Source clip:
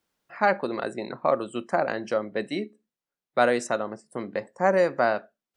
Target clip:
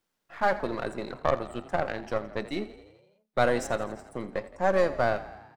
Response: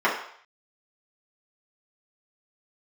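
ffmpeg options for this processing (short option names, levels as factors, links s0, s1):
-filter_complex "[0:a]aeval=exprs='if(lt(val(0),0),0.447*val(0),val(0))':c=same,asettb=1/sr,asplit=3[s0][s1][s2];[s0]atrim=end=1.224[s3];[s1]atrim=start=1.22:end=2.42,asetpts=PTS-STARTPTS,afade=t=in:d=0.004:c=qsin,afade=t=out:st=1.196:d=0.004:c=qsin,aeval=exprs='0.335*(cos(1*acos(clip(val(0)/0.335,-1,1)))-cos(1*PI/2))+0.0188*(cos(7*acos(clip(val(0)/0.335,-1,1)))-cos(7*PI/2))':c=same[s4];[s2]atrim=start=2.416[s5];[s3][s4]acrossfade=d=0.004:c1=hsin:c2=qsin[s6];[s6][s5]acrossfade=d=0.004:c1=qsin:c2=hsin,asplit=8[s7][s8][s9][s10][s11][s12][s13][s14];[s8]adelay=84,afreqshift=31,volume=0.158[s15];[s9]adelay=168,afreqshift=62,volume=0.101[s16];[s10]adelay=252,afreqshift=93,volume=0.0646[s17];[s11]adelay=336,afreqshift=124,volume=0.0417[s18];[s12]adelay=420,afreqshift=155,volume=0.0266[s19];[s13]adelay=504,afreqshift=186,volume=0.017[s20];[s14]adelay=588,afreqshift=217,volume=0.0108[s21];[s7][s15][s16][s17][s18][s19][s20][s21]amix=inputs=8:normalize=0"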